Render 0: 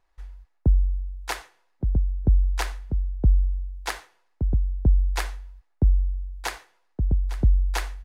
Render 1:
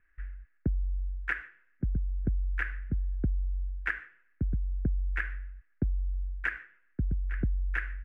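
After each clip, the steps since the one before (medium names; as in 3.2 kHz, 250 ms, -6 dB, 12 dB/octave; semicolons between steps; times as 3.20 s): FFT filter 260 Hz 0 dB, 910 Hz -20 dB, 1.6 kHz +12 dB, 2.7 kHz -2 dB, 4.1 kHz -28 dB; compression 6:1, threshold -27 dBFS, peak gain reduction 13 dB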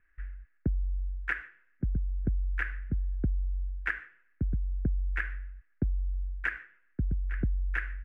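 no audible change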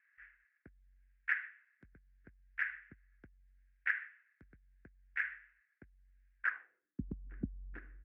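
band-pass sweep 2 kHz -> 240 Hz, 6.37–6.93 s; transient shaper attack -7 dB, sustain -3 dB; trim +5 dB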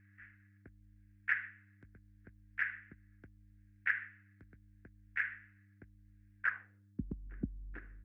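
mains buzz 100 Hz, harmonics 3, -66 dBFS -8 dB/octave; trim +1 dB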